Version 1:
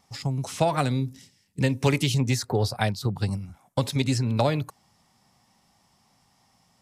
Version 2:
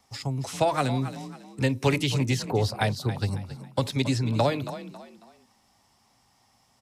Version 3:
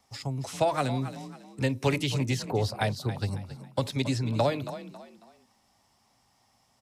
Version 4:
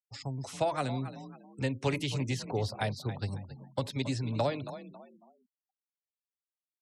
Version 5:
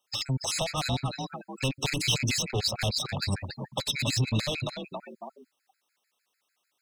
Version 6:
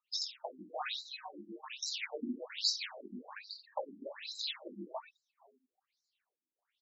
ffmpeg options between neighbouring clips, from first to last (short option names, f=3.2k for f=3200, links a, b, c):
-filter_complex "[0:a]equalizer=f=170:w=5.5:g=-14,acrossover=split=110|510|4800[a][b][c][d];[d]alimiter=level_in=7dB:limit=-24dB:level=0:latency=1,volume=-7dB[e];[a][b][c][e]amix=inputs=4:normalize=0,asplit=4[f][g][h][i];[g]adelay=274,afreqshift=37,volume=-13dB[j];[h]adelay=548,afreqshift=74,volume=-22.1dB[k];[i]adelay=822,afreqshift=111,volume=-31.2dB[l];[f][j][k][l]amix=inputs=4:normalize=0"
-af "equalizer=f=610:t=o:w=0.37:g=2.5,volume=-3dB"
-af "afftfilt=real='re*gte(hypot(re,im),0.00398)':imag='im*gte(hypot(re,im),0.00398)':win_size=1024:overlap=0.75,volume=-4.5dB"
-filter_complex "[0:a]asplit=2[a][b];[b]highpass=f=720:p=1,volume=26dB,asoftclip=type=tanh:threshold=-16dB[c];[a][c]amix=inputs=2:normalize=0,lowpass=f=3.3k:p=1,volume=-6dB,acrossover=split=170|3000[d][e][f];[e]acompressor=threshold=-47dB:ratio=2.5[g];[d][g][f]amix=inputs=3:normalize=0,afftfilt=real='re*gt(sin(2*PI*6.7*pts/sr)*(1-2*mod(floor(b*sr/1024/1300),2)),0)':imag='im*gt(sin(2*PI*6.7*pts/sr)*(1-2*mod(floor(b*sr/1024/1300),2)),0)':win_size=1024:overlap=0.75,volume=8dB"
-af "aecho=1:1:20|48|87.2|142.1|218.9:0.631|0.398|0.251|0.158|0.1,afftfilt=real='re*between(b*sr/1024,250*pow(5500/250,0.5+0.5*sin(2*PI*1.2*pts/sr))/1.41,250*pow(5500/250,0.5+0.5*sin(2*PI*1.2*pts/sr))*1.41)':imag='im*between(b*sr/1024,250*pow(5500/250,0.5+0.5*sin(2*PI*1.2*pts/sr))/1.41,250*pow(5500/250,0.5+0.5*sin(2*PI*1.2*pts/sr))*1.41)':win_size=1024:overlap=0.75,volume=-3.5dB"